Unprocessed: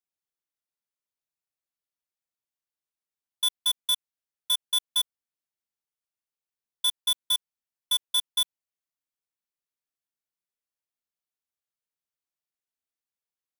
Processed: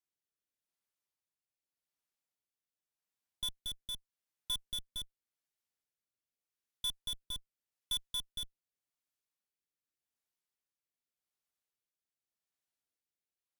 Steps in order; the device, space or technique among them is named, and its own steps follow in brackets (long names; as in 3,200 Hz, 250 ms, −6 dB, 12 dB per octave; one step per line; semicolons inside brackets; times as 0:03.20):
overdriven rotary cabinet (tube saturation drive 38 dB, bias 0.75; rotating-speaker cabinet horn 0.85 Hz)
level +5.5 dB